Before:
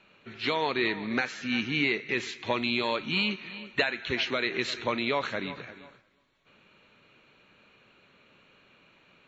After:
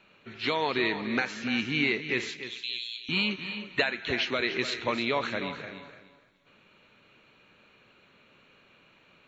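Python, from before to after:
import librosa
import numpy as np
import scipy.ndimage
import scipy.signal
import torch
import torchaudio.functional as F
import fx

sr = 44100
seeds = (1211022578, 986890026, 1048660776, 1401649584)

y = fx.steep_highpass(x, sr, hz=2900.0, slope=36, at=(2.37, 3.09))
y = fx.echo_feedback(y, sr, ms=294, feedback_pct=20, wet_db=-11)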